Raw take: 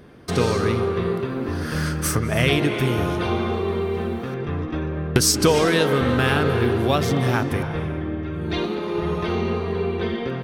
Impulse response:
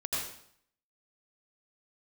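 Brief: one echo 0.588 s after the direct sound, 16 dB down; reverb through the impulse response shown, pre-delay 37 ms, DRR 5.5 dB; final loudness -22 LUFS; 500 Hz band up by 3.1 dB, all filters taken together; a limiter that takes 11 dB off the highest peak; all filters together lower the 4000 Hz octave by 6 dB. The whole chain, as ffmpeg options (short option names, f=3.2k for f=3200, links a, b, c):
-filter_complex "[0:a]equalizer=f=500:t=o:g=4,equalizer=f=4k:t=o:g=-8.5,alimiter=limit=-15.5dB:level=0:latency=1,aecho=1:1:588:0.158,asplit=2[a][b];[1:a]atrim=start_sample=2205,adelay=37[c];[b][c]afir=irnorm=-1:irlink=0,volume=-11dB[d];[a][d]amix=inputs=2:normalize=0,volume=2dB"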